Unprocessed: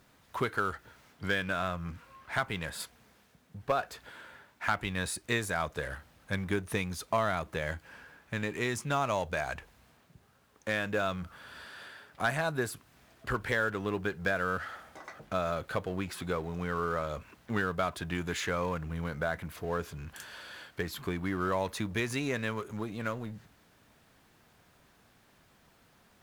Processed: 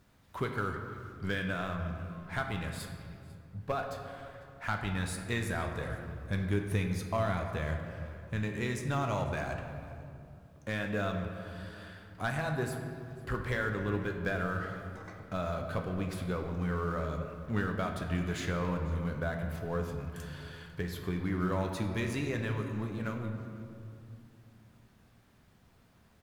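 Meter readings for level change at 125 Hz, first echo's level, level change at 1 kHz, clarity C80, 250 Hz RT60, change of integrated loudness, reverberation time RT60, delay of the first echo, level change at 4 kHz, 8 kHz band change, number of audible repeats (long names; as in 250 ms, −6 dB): +4.5 dB, −22.0 dB, −3.5 dB, 6.0 dB, 3.8 s, −1.5 dB, 2.5 s, 498 ms, −4.5 dB, −5.5 dB, 1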